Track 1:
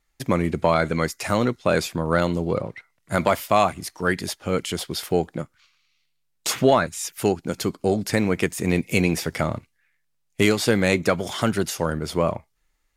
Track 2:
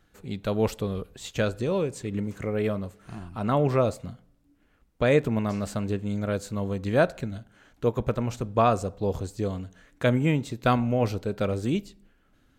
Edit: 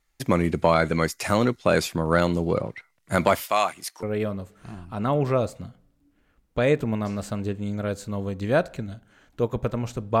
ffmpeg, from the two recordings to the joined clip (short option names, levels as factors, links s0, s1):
-filter_complex "[0:a]asettb=1/sr,asplit=3[s0][s1][s2];[s0]atrim=end=3.464[s3];[s1]atrim=start=3.46:end=4.03,asetpts=PTS-STARTPTS,afade=t=in:d=0.004:c=qsin,afade=t=out:st=0.566:d=0.004:c=qsin,highpass=f=990:p=1[s4];[s2]atrim=start=4.026[s5];[s3][s4]acrossfade=d=0.004:c1=hsin:c2=qsin[s6];[s6][s5]acrossfade=d=0.004:c1=qsin:c2=hsin,apad=whole_dur=10.2,atrim=end=10.2,atrim=end=4.032[s7];[1:a]atrim=start=2.468:end=8.64[s8];[s7][s8]acrossfade=d=0.004:c1=hsin:c2=hsin"